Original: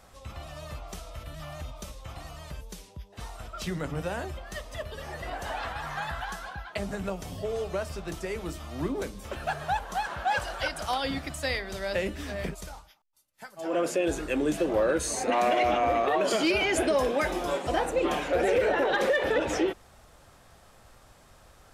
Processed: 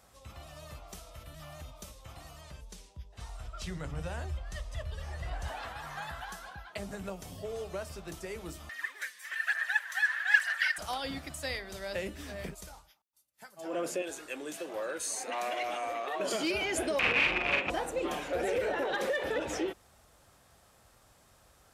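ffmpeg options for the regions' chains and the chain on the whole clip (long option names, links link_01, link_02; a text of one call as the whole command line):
ffmpeg -i in.wav -filter_complex "[0:a]asettb=1/sr,asplit=3[link_01][link_02][link_03];[link_01]atrim=end=2.414[link_04];[link_02]atrim=start=2.41:end=5.48,asetpts=PTS-STARTPTS,afade=type=in:duration=0.004:curve=qsin,afade=type=out:start_time=3.066:duration=0.004:curve=qsin,lowpass=9100,bandreject=frequency=50:width_type=h:width=6,bandreject=frequency=100:width_type=h:width=6,bandreject=frequency=150:width_type=h:width=6,bandreject=frequency=200:width_type=h:width=6,bandreject=frequency=250:width_type=h:width=6,bandreject=frequency=300:width_type=h:width=6,bandreject=frequency=350:width_type=h:width=6,bandreject=frequency=400:width_type=h:width=6,bandreject=frequency=450:width_type=h:width=6,bandreject=frequency=500:width_type=h:width=6,asubboost=boost=9:cutoff=110[link_05];[link_03]atrim=start=5.476[link_06];[link_04][link_05]acrossfade=duration=0.004:curve1=hsin:curve2=qsin[link_07];[link_07][link_06]acrossfade=duration=0.004:curve1=qsin:curve2=hsin,asettb=1/sr,asplit=3[link_08][link_09][link_10];[link_08]atrim=end=8.694[link_11];[link_09]atrim=start=8.69:end=10.78,asetpts=PTS-STARTPTS,afade=type=in:duration=0.004:curve=qsin,afade=type=out:start_time=2.086:duration=0.004:curve=qsin,aphaser=in_gain=1:out_gain=1:delay=4.1:decay=0.51:speed=1.1:type=sinusoidal,highpass=frequency=1800:width_type=q:width=13[link_12];[link_10]atrim=start=10.776[link_13];[link_11][link_12]acrossfade=duration=0.004:curve1=hsin:curve2=qsin[link_14];[link_14][link_13]acrossfade=duration=0.004:curve1=qsin:curve2=hsin,asettb=1/sr,asplit=3[link_15][link_16][link_17];[link_15]atrim=end=14.024[link_18];[link_16]atrim=start=14.02:end=16.2,asetpts=PTS-STARTPTS,afade=type=in:duration=0.004:curve=qsin,afade=type=out:start_time=2.176:duration=0.004:curve=qsin,highpass=frequency=810:poles=1,aecho=1:1:705:0.0794,atrim=end_sample=96138[link_19];[link_17]atrim=start=16.196[link_20];[link_18][link_19]acrossfade=duration=0.004:curve1=hsin:curve2=qsin[link_21];[link_21][link_20]acrossfade=duration=0.004:curve1=qsin:curve2=hsin,asettb=1/sr,asplit=3[link_22][link_23][link_24];[link_22]atrim=end=16.994[link_25];[link_23]atrim=start=16.99:end=17.7,asetpts=PTS-STARTPTS,afade=type=in:duration=0.004:curve=qsin,afade=type=out:start_time=0.706:duration=0.004:curve=qsin,aeval=exprs='(mod(13.3*val(0)+1,2)-1)/13.3':channel_layout=same,lowpass=frequency=2500:width_type=q:width=8.4,asplit=2[link_26][link_27];[link_27]adelay=44,volume=-3dB[link_28];[link_26][link_28]amix=inputs=2:normalize=0,atrim=end_sample=31311[link_29];[link_24]atrim=start=17.696[link_30];[link_25][link_29]acrossfade=duration=0.004:curve1=hsin:curve2=qsin[link_31];[link_31][link_30]acrossfade=duration=0.004:curve1=qsin:curve2=hsin,highpass=41,highshelf=frequency=5900:gain=6.5,volume=-7dB" out.wav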